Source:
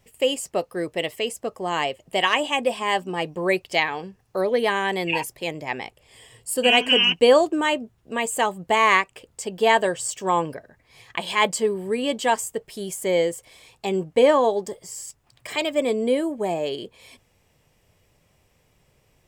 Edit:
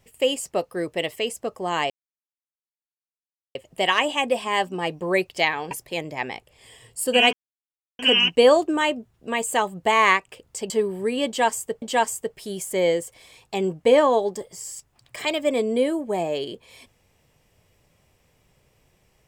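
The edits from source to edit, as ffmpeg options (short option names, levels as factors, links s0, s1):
-filter_complex "[0:a]asplit=6[s0][s1][s2][s3][s4][s5];[s0]atrim=end=1.9,asetpts=PTS-STARTPTS,afade=t=out:st=1.896:d=0.004:c=hsin,apad=pad_dur=1.65[s6];[s1]atrim=start=1.9:end=4.062,asetpts=PTS-STARTPTS,afade=t=in:d=0.004:c=hsin[s7];[s2]atrim=start=5.208:end=6.83,asetpts=PTS-STARTPTS,afade=t=out:st=1.618:d=0.004:c=hsin,apad=pad_dur=0.66[s8];[s3]atrim=start=6.83:end=9.542,asetpts=PTS-STARTPTS,afade=t=in:d=0.004:c=hsin[s9];[s4]atrim=start=11.558:end=12.682[s10];[s5]atrim=start=12.128[s11];[s6][s7]concat=n=2:v=0:a=1[s12];[s8][s9]concat=n=2:v=0:a=1[s13];[s12][s13]acrossfade=d=0.004:c1=hsin:c2=hsin[s14];[s14][s10]acrossfade=d=0.004:c1=hsin:c2=hsin[s15];[s15][s11]acrossfade=d=0.004:c1=hsin:c2=hsin"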